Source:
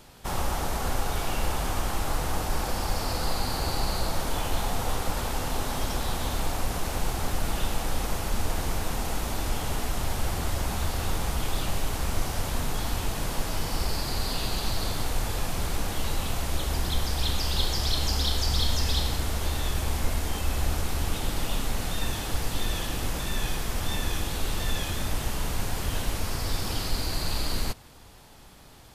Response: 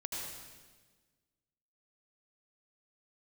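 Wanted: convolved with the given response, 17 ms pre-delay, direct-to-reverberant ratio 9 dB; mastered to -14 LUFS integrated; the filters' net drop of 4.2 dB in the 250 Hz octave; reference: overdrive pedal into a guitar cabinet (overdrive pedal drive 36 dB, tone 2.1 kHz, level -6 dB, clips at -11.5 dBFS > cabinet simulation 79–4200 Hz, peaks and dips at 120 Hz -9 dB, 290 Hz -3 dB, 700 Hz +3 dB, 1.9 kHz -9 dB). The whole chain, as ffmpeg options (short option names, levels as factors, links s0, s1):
-filter_complex "[0:a]equalizer=f=250:t=o:g=-3.5,asplit=2[s0][s1];[1:a]atrim=start_sample=2205,adelay=17[s2];[s1][s2]afir=irnorm=-1:irlink=0,volume=0.299[s3];[s0][s3]amix=inputs=2:normalize=0,asplit=2[s4][s5];[s5]highpass=f=720:p=1,volume=63.1,asoftclip=type=tanh:threshold=0.266[s6];[s4][s6]amix=inputs=2:normalize=0,lowpass=f=2100:p=1,volume=0.501,highpass=79,equalizer=f=120:t=q:w=4:g=-9,equalizer=f=290:t=q:w=4:g=-3,equalizer=f=700:t=q:w=4:g=3,equalizer=f=1900:t=q:w=4:g=-9,lowpass=f=4200:w=0.5412,lowpass=f=4200:w=1.3066,volume=2.66"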